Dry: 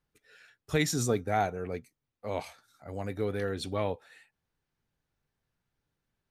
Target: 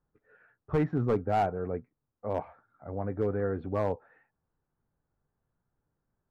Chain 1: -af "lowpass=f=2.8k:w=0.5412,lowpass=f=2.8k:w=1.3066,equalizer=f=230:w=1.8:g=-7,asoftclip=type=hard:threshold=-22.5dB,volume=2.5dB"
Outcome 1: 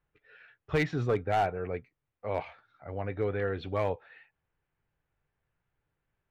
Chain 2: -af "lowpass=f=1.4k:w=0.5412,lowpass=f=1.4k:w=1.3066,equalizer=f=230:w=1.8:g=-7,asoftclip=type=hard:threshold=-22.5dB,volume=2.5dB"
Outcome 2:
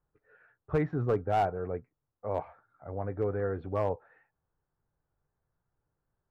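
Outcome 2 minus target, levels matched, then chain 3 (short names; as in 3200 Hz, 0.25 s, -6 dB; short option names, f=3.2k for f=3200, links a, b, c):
250 Hz band -2.5 dB
-af "lowpass=f=1.4k:w=0.5412,lowpass=f=1.4k:w=1.3066,asoftclip=type=hard:threshold=-22.5dB,volume=2.5dB"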